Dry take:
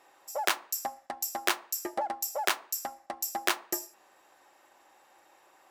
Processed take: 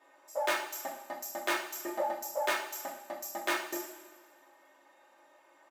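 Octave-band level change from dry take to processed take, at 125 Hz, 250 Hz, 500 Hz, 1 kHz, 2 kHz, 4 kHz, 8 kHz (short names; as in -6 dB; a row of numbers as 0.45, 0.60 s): n/a, +0.5 dB, +2.5 dB, -2.0 dB, -1.0 dB, -5.0 dB, -6.5 dB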